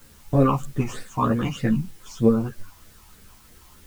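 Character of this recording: phasing stages 8, 3.2 Hz, lowest notch 470–1000 Hz; a quantiser's noise floor 10-bit, dither triangular; a shimmering, thickened sound

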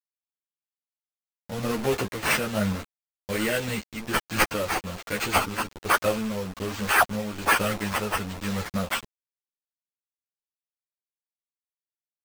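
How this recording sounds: a quantiser's noise floor 6-bit, dither none; tremolo triangle 1.2 Hz, depth 50%; aliases and images of a low sample rate 11 kHz, jitter 0%; a shimmering, thickened sound

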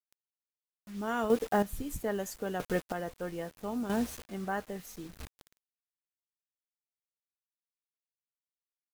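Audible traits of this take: a quantiser's noise floor 8-bit, dither none; chopped level 0.77 Hz, depth 65%, duty 25%

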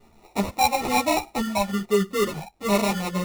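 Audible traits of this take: phasing stages 8, 1.1 Hz, lowest notch 360–3600 Hz; aliases and images of a low sample rate 1.6 kHz, jitter 0%; a shimmering, thickened sound

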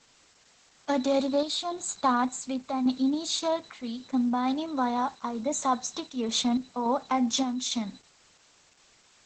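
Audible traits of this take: random-step tremolo; a quantiser's noise floor 10-bit, dither triangular; Opus

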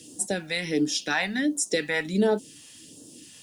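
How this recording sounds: a quantiser's noise floor 12-bit, dither triangular; phasing stages 2, 1.4 Hz, lowest notch 340–2100 Hz

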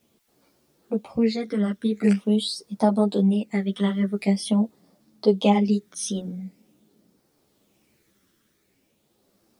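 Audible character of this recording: phasing stages 12, 0.45 Hz, lowest notch 780–2700 Hz; a quantiser's noise floor 12-bit, dither triangular; tremolo triangle 0.53 Hz, depth 40%; a shimmering, thickened sound

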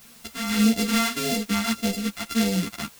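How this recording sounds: a buzz of ramps at a fixed pitch in blocks of 64 samples; phasing stages 2, 1.7 Hz, lowest notch 460–1100 Hz; a quantiser's noise floor 8-bit, dither triangular; a shimmering, thickened sound

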